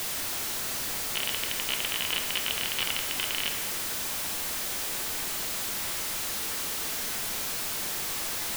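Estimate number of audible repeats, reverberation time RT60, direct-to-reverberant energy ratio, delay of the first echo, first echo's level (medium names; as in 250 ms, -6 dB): no echo, 1.8 s, 5.0 dB, no echo, no echo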